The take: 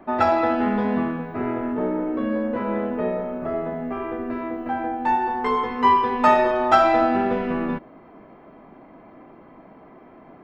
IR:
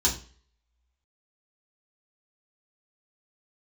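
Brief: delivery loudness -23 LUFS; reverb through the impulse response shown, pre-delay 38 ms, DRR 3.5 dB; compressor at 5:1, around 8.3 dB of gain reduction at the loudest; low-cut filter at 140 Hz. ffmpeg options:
-filter_complex "[0:a]highpass=140,acompressor=threshold=-20dB:ratio=5,asplit=2[a][b];[1:a]atrim=start_sample=2205,adelay=38[c];[b][c]afir=irnorm=-1:irlink=0,volume=-14dB[d];[a][d]amix=inputs=2:normalize=0,volume=0.5dB"

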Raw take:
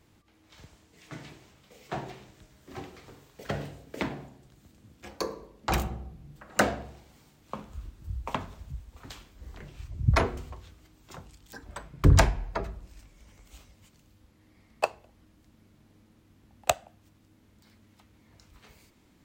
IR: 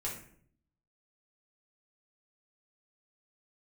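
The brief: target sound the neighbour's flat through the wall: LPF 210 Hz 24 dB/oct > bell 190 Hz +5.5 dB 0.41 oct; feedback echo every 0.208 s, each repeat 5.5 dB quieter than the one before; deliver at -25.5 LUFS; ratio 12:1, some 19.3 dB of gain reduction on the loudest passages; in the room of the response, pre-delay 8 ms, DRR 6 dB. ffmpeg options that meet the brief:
-filter_complex "[0:a]acompressor=threshold=-33dB:ratio=12,aecho=1:1:208|416|624|832|1040|1248|1456:0.531|0.281|0.149|0.079|0.0419|0.0222|0.0118,asplit=2[a][b];[1:a]atrim=start_sample=2205,adelay=8[c];[b][c]afir=irnorm=-1:irlink=0,volume=-7.5dB[d];[a][d]amix=inputs=2:normalize=0,lowpass=f=210:w=0.5412,lowpass=f=210:w=1.3066,equalizer=f=190:t=o:w=0.41:g=5.5,volume=19dB"

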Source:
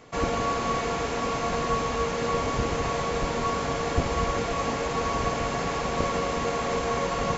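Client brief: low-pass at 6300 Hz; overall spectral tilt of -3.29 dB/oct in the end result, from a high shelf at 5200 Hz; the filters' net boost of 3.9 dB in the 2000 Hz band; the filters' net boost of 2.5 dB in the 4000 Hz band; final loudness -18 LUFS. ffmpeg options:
-af "lowpass=6.3k,equalizer=f=2k:t=o:g=4.5,equalizer=f=4k:t=o:g=5,highshelf=f=5.2k:g=-6.5,volume=8dB"

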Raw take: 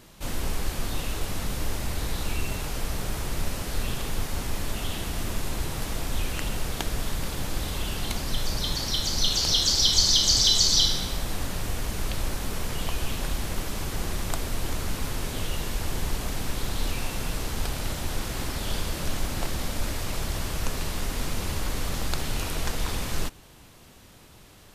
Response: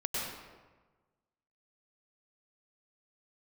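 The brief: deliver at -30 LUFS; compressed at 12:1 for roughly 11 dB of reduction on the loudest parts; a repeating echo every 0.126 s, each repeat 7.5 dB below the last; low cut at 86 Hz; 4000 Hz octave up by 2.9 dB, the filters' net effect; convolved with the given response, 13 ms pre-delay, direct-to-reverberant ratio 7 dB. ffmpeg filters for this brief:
-filter_complex "[0:a]highpass=86,equalizer=f=4k:t=o:g=3.5,acompressor=threshold=-25dB:ratio=12,aecho=1:1:126|252|378|504|630:0.422|0.177|0.0744|0.0312|0.0131,asplit=2[a][b];[1:a]atrim=start_sample=2205,adelay=13[c];[b][c]afir=irnorm=-1:irlink=0,volume=-12.5dB[d];[a][d]amix=inputs=2:normalize=0,volume=-0.5dB"

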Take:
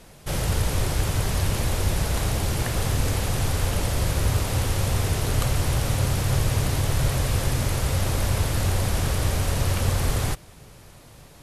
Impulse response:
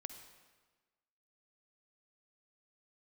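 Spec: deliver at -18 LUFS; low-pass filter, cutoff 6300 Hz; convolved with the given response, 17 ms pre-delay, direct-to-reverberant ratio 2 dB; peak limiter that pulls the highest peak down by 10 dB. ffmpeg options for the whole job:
-filter_complex "[0:a]lowpass=6.3k,alimiter=limit=-20dB:level=0:latency=1,asplit=2[a][b];[1:a]atrim=start_sample=2205,adelay=17[c];[b][c]afir=irnorm=-1:irlink=0,volume=1.5dB[d];[a][d]amix=inputs=2:normalize=0,volume=10dB"

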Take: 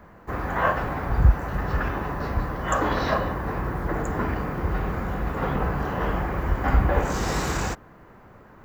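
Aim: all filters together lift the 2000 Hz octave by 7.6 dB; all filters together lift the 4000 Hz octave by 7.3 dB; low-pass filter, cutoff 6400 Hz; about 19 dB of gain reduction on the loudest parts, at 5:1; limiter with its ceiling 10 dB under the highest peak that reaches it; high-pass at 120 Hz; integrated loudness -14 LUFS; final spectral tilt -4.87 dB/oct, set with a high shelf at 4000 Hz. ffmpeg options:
-af "highpass=120,lowpass=6.4k,equalizer=f=2k:t=o:g=8,highshelf=f=4k:g=6.5,equalizer=f=4k:t=o:g=3.5,acompressor=threshold=-37dB:ratio=5,volume=29dB,alimiter=limit=-5.5dB:level=0:latency=1"

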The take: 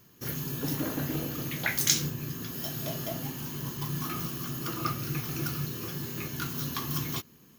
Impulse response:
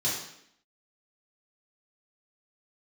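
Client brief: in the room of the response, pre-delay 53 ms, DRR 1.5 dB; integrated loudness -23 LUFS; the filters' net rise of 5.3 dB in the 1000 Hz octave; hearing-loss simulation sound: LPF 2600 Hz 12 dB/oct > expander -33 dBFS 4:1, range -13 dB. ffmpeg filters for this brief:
-filter_complex "[0:a]equalizer=f=1k:t=o:g=7,asplit=2[a][b];[1:a]atrim=start_sample=2205,adelay=53[c];[b][c]afir=irnorm=-1:irlink=0,volume=-9.5dB[d];[a][d]amix=inputs=2:normalize=0,lowpass=2.6k,agate=range=-13dB:threshold=-33dB:ratio=4,volume=8dB"

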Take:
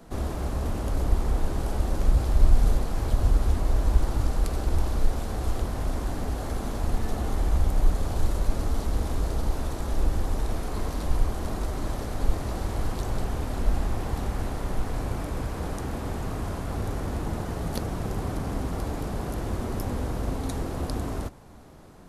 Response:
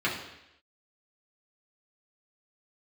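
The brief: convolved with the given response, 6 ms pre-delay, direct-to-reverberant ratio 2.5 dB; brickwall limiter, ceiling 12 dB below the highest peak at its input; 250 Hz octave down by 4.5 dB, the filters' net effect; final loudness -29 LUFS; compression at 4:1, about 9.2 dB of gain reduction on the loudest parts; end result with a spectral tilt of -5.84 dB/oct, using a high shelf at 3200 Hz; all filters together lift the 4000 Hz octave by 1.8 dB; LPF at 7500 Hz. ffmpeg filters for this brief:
-filter_complex "[0:a]lowpass=7.5k,equalizer=f=250:t=o:g=-6,highshelf=f=3.2k:g=-4,equalizer=f=4k:t=o:g=5.5,acompressor=threshold=-23dB:ratio=4,alimiter=level_in=1.5dB:limit=-24dB:level=0:latency=1,volume=-1.5dB,asplit=2[a][b];[1:a]atrim=start_sample=2205,adelay=6[c];[b][c]afir=irnorm=-1:irlink=0,volume=-14dB[d];[a][d]amix=inputs=2:normalize=0,volume=6.5dB"

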